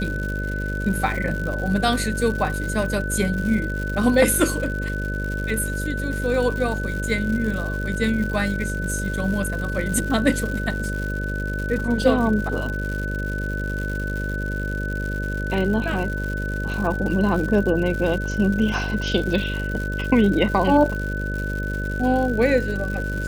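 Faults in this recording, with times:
buzz 50 Hz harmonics 12 -27 dBFS
crackle 160 per s -28 dBFS
whine 1.5 kHz -29 dBFS

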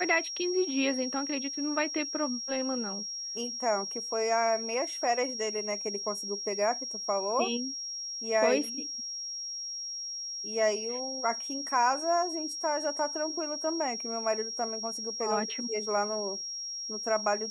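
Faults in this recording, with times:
whine 5.6 kHz -35 dBFS

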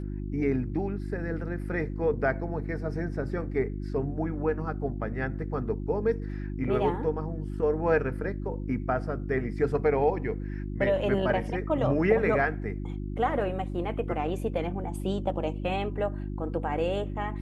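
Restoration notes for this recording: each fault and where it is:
hum 50 Hz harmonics 7 -34 dBFS

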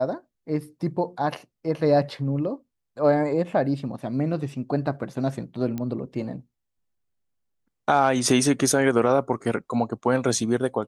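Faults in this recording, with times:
5.78 s: pop -18 dBFS

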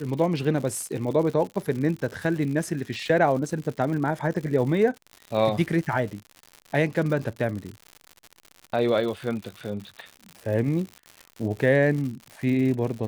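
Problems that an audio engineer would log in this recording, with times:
crackle 130 per s -32 dBFS

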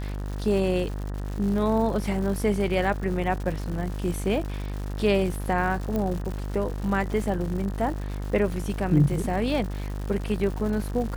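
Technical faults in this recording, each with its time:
buzz 50 Hz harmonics 38 -31 dBFS
crackle 240 per s -33 dBFS
5.96 s: pop -16 dBFS

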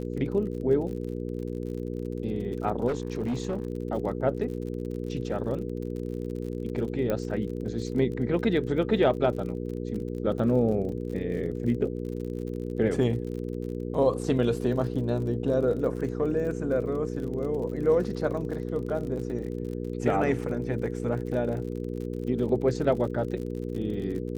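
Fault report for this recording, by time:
crackle 45 per s -36 dBFS
hum 60 Hz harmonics 8 -33 dBFS
2.87–3.67 s: clipped -24.5 dBFS
7.10 s: pop -16 dBFS

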